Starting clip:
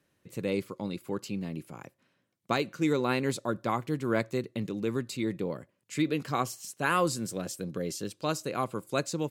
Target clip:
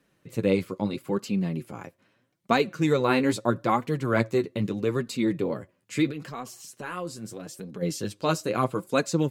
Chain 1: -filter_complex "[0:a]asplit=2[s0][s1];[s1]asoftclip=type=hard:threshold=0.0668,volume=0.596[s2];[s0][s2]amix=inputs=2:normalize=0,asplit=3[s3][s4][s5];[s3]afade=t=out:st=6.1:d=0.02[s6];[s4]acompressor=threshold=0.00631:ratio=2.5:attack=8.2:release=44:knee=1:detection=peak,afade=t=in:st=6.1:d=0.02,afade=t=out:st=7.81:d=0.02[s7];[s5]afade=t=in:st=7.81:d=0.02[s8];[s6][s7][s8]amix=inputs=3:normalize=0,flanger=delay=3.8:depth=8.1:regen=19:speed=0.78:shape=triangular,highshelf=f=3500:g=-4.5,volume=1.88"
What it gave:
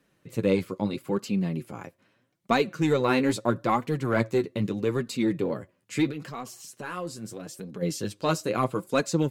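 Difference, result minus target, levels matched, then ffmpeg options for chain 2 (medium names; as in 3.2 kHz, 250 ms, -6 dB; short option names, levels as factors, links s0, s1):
hard clipper: distortion +26 dB
-filter_complex "[0:a]asplit=2[s0][s1];[s1]asoftclip=type=hard:threshold=0.178,volume=0.596[s2];[s0][s2]amix=inputs=2:normalize=0,asplit=3[s3][s4][s5];[s3]afade=t=out:st=6.1:d=0.02[s6];[s4]acompressor=threshold=0.00631:ratio=2.5:attack=8.2:release=44:knee=1:detection=peak,afade=t=in:st=6.1:d=0.02,afade=t=out:st=7.81:d=0.02[s7];[s5]afade=t=in:st=7.81:d=0.02[s8];[s6][s7][s8]amix=inputs=3:normalize=0,flanger=delay=3.8:depth=8.1:regen=19:speed=0.78:shape=triangular,highshelf=f=3500:g=-4.5,volume=1.88"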